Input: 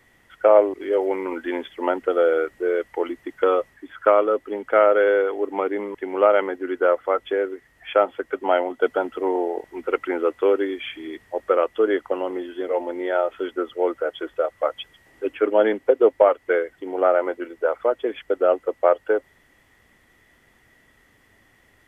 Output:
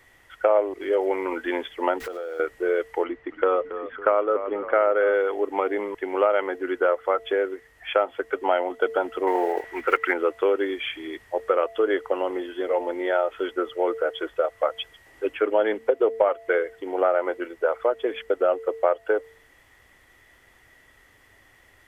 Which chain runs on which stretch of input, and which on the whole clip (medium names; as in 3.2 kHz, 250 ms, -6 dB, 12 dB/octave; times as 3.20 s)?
2.00–2.40 s: jump at every zero crossing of -35 dBFS + compression 16:1, threshold -29 dBFS
3.04–5.14 s: low-pass 2.4 kHz + frequency-shifting echo 276 ms, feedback 47%, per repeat -31 Hz, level -15 dB
9.27–10.14 s: block-companded coder 7-bit + peaking EQ 1.8 kHz +11.5 dB 1.6 oct
whole clip: peaking EQ 200 Hz -9 dB 1.2 oct; de-hum 225.3 Hz, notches 3; compression 2.5:1, threshold -21 dBFS; trim +2.5 dB